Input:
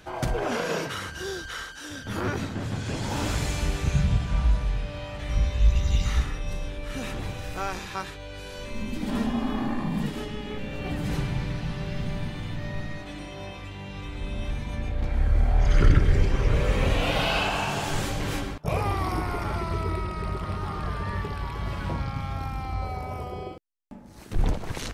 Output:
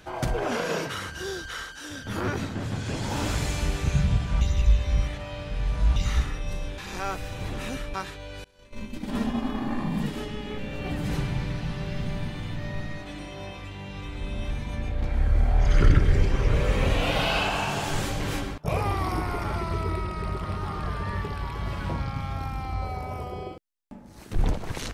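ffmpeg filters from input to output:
ffmpeg -i in.wav -filter_complex "[0:a]asettb=1/sr,asplit=3[link_01][link_02][link_03];[link_01]atrim=end=8.444[link_04];[link_02]atrim=start=8.44:end=9.71,asetpts=PTS-STARTPTS,afade=type=in:duration=0.004:curve=qsin,afade=type=out:start_time=1.266:duration=0.004:curve=qsin,agate=range=-33dB:threshold=-26dB:ratio=3:release=100:detection=peak[link_05];[link_03]atrim=start=9.706[link_06];[link_04][link_05]acrossfade=duration=0.004:curve1=hsin:curve2=qsin[link_07];[link_07][link_06]acrossfade=duration=0.004:curve1=qsin:curve2=hsin,asplit=5[link_08][link_09][link_10][link_11][link_12];[link_08]atrim=end=4.412[link_13];[link_09]atrim=start=4.408:end=5.962,asetpts=PTS-STARTPTS,areverse[link_14];[link_10]atrim=start=5.958:end=6.782[link_15];[link_11]atrim=start=6.778:end=7.942,asetpts=PTS-STARTPTS,areverse[link_16];[link_12]atrim=start=7.938[link_17];[link_13][link_14]acrossfade=duration=0.004:curve1=hsin:curve2=hsin[link_18];[link_18][link_15]acrossfade=duration=0.004:curve1=hsin:curve2=hsin[link_19];[link_19][link_16]acrossfade=duration=0.004:curve1=hsin:curve2=hsin[link_20];[link_20][link_17]acrossfade=duration=0.004:curve1=hsin:curve2=hsin" out.wav

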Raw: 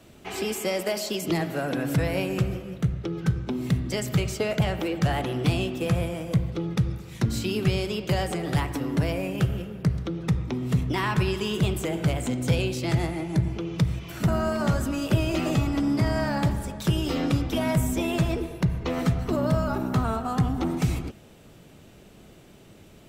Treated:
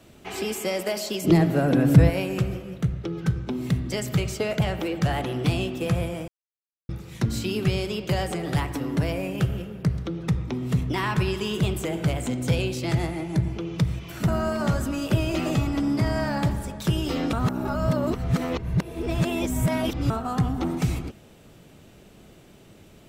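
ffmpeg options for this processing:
ffmpeg -i in.wav -filter_complex "[0:a]asettb=1/sr,asplit=3[link_01][link_02][link_03];[link_01]atrim=end=1.244[link_04];[link_02]atrim=start=1.24:end=2.1,asetpts=PTS-STARTPTS,afade=type=in:duration=0.004:curve=qsin,afade=type=out:start_time=0.856:duration=0.004:curve=qsin,lowshelf=frequency=490:gain=11.5[link_05];[link_03]atrim=start=2.096[link_06];[link_04][link_05]acrossfade=duration=0.004:curve1=hsin:curve2=qsin[link_07];[link_07][link_06]acrossfade=duration=0.004:curve1=qsin:curve2=hsin,asplit=5[link_08][link_09][link_10][link_11][link_12];[link_08]atrim=end=6.28,asetpts=PTS-STARTPTS,afade=type=out:start_time=6.276:duration=0.004:curve=hsin[link_13];[link_09]atrim=start=6.28:end=6.89,asetpts=PTS-STARTPTS,volume=0[link_14];[link_10]atrim=start=6.89:end=17.332,asetpts=PTS-STARTPTS,afade=type=in:duration=0.004:curve=hsin[link_15];[link_11]atrim=start=17.328:end=20.102,asetpts=PTS-STARTPTS,areverse[link_16];[link_12]atrim=start=20.098[link_17];[link_13][link_14][link_15]concat=n=3:v=0:a=1[link_18];[link_18][link_16]acrossfade=duration=0.004:curve1=hsin:curve2=hsin[link_19];[link_19][link_17]acrossfade=duration=0.004:curve1=hsin:curve2=hsin" out.wav

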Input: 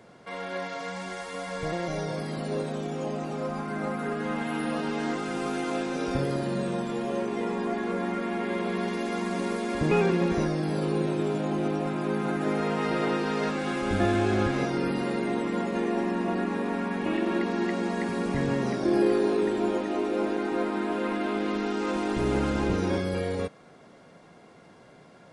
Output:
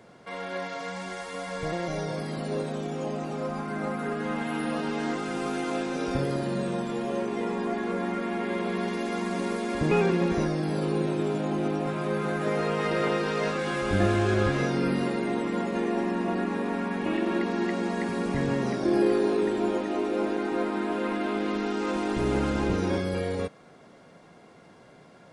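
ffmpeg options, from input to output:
ffmpeg -i in.wav -filter_complex "[0:a]asettb=1/sr,asplit=3[link_01][link_02][link_03];[link_01]atrim=end=11.864[link_04];[link_02]atrim=start=11.86:end=15.08,asetpts=PTS-STARTPTS,afade=type=in:duration=0.004:curve=qsin,afade=type=out:start_time=3.216:duration=0.004:curve=qsin,asplit=2[link_05][link_06];[link_06]adelay=21,volume=-4dB[link_07];[link_05][link_07]amix=inputs=2:normalize=0,atrim=end_sample=142002[link_08];[link_03]atrim=start=15.076[link_09];[link_04][link_08]acrossfade=duration=0.004:curve1=hsin:curve2=qsin[link_10];[link_10][link_09]acrossfade=duration=0.004:curve1=qsin:curve2=hsin" out.wav

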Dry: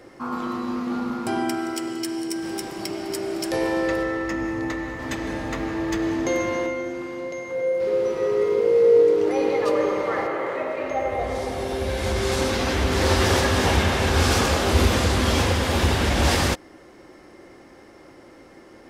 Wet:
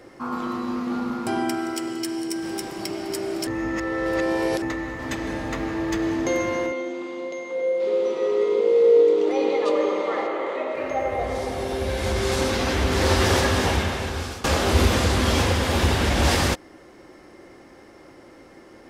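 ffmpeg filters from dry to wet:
ffmpeg -i in.wav -filter_complex "[0:a]asettb=1/sr,asplit=3[link_01][link_02][link_03];[link_01]atrim=end=6.724[link_04];[link_02]atrim=start=6.72:end=10.75,asetpts=PTS-STARTPTS,afade=type=in:duration=0.004:curve=qsin,afade=type=out:start_time=4.026:duration=0.004:curve=qsin,highpass=frequency=210:width=0.5412,highpass=frequency=210:width=1.3066,equalizer=frequency=1600:width_type=q:width=4:gain=-7,equalizer=frequency=3500:width_type=q:width=4:gain=6,equalizer=frequency=5400:width_type=q:width=4:gain=-4,lowpass=frequency=8200:width=0.5412,lowpass=frequency=8200:width=1.3066[link_05];[link_03]atrim=start=10.746[link_06];[link_04][link_05]acrossfade=duration=0.004:curve1=hsin:curve2=qsin[link_07];[link_07][link_06]acrossfade=duration=0.004:curve1=qsin:curve2=hsin,asplit=4[link_08][link_09][link_10][link_11];[link_08]atrim=end=3.472[link_12];[link_09]atrim=start=3.468:end=4.622,asetpts=PTS-STARTPTS,areverse[link_13];[link_10]atrim=start=4.618:end=14.44,asetpts=PTS-STARTPTS,afade=type=out:start_time=8.862:duration=0.96:silence=0.0944061[link_14];[link_11]atrim=start=14.44,asetpts=PTS-STARTPTS,afade=type=in:duration=0.004:curve=hsin:silence=0.0944061[link_15];[link_12][link_13]acrossfade=duration=0.004:curve1=hsin:curve2=hsin[link_16];[link_14][link_15]concat=n=2:v=0:a=1[link_17];[link_16][link_17]acrossfade=duration=0.004:curve1=hsin:curve2=hsin" out.wav

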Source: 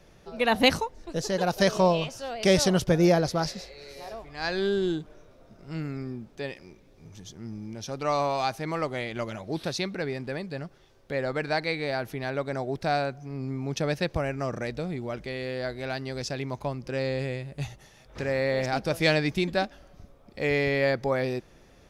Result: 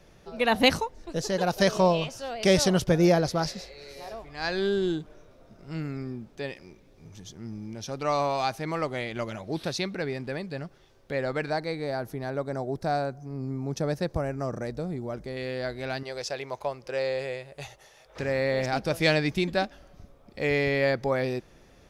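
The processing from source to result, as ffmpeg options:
ffmpeg -i in.wav -filter_complex "[0:a]asettb=1/sr,asplit=3[link_01][link_02][link_03];[link_01]atrim=end=11.504[link_04];[link_02]atrim=start=11.5:end=15.37,asetpts=PTS-STARTPTS,afade=type=in:duration=0.004:curve=qsin,afade=type=out:start_time=3.866:duration=0.004:curve=qsin,equalizer=frequency=2700:width_type=o:width=1.3:gain=-11.5[link_05];[link_03]atrim=start=15.366[link_06];[link_04][link_05]acrossfade=duration=0.004:curve1=hsin:curve2=qsin[link_07];[link_07][link_06]acrossfade=duration=0.004:curve1=qsin:curve2=hsin,asettb=1/sr,asplit=3[link_08][link_09][link_10];[link_08]atrim=end=16.034[link_11];[link_09]atrim=start=16.03:end=18.19,asetpts=PTS-STARTPTS,afade=type=in:duration=0.004:curve=qsin,afade=type=out:start_time=2.156:duration=0.004:curve=qsin,lowshelf=frequency=350:width_type=q:width=1.5:gain=-10.5[link_12];[link_10]atrim=start=18.186[link_13];[link_11][link_12]acrossfade=duration=0.004:curve1=hsin:curve2=qsin[link_14];[link_14][link_13]acrossfade=duration=0.004:curve1=qsin:curve2=hsin" out.wav

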